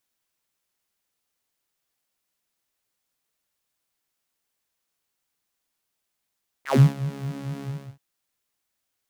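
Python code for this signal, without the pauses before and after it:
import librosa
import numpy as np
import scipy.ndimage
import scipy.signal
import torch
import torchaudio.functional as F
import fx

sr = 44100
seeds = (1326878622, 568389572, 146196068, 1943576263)

y = fx.sub_patch_wobble(sr, seeds[0], note=49, wave='saw', wave2='saw', interval_st=0, level2_db=-9.0, sub_db=-15.0, noise_db=-30.0, kind='highpass', cutoff_hz=130.0, q=6.4, env_oct=4.0, env_decay_s=0.13, env_sustain_pct=10, attack_ms=81.0, decay_s=0.21, sustain_db=-16.0, release_s=0.34, note_s=0.99, lfo_hz=4.5, wobble_oct=0.4)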